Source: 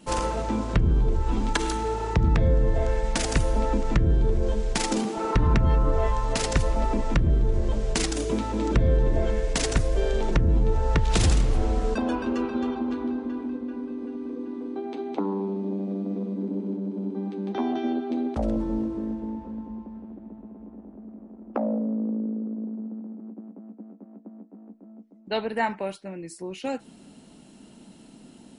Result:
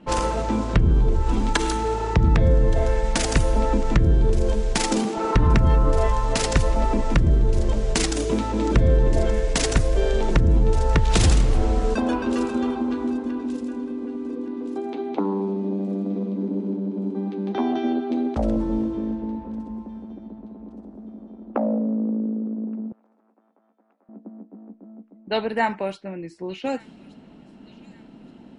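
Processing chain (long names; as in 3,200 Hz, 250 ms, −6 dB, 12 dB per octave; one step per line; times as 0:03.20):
0:22.92–0:24.09: high-pass filter 1,300 Hz 12 dB per octave
low-pass that shuts in the quiet parts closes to 2,100 Hz, open at −21.5 dBFS
delay with a high-pass on its return 1,173 ms, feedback 37%, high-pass 2,500 Hz, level −18 dB
level +3.5 dB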